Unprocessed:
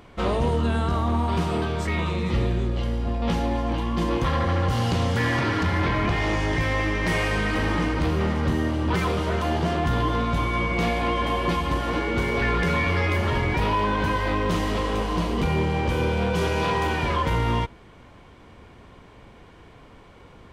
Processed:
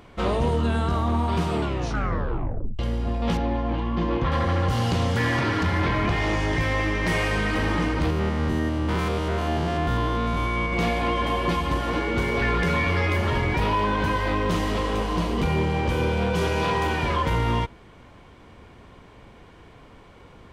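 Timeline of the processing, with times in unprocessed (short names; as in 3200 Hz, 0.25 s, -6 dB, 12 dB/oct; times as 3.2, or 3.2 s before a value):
1.54 tape stop 1.25 s
3.37–4.32 air absorption 200 m
8.1–10.73 stepped spectrum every 0.1 s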